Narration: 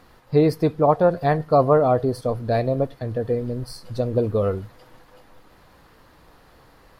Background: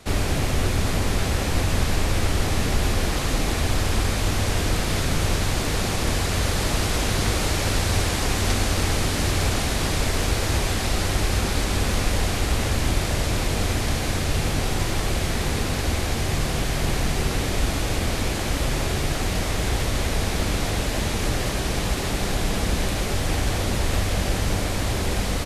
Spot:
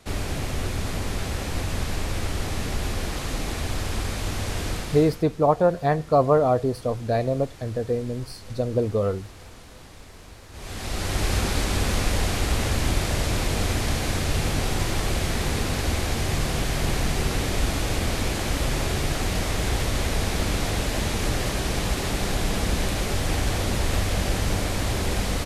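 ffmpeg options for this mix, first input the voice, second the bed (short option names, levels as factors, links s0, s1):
-filter_complex "[0:a]adelay=4600,volume=0.794[s0];[1:a]volume=6.68,afade=t=out:st=4.7:d=0.54:silence=0.133352,afade=t=in:st=10.52:d=0.78:silence=0.0794328[s1];[s0][s1]amix=inputs=2:normalize=0"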